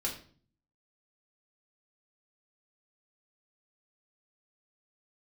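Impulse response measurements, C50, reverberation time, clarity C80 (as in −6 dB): 8.0 dB, 0.45 s, 13.0 dB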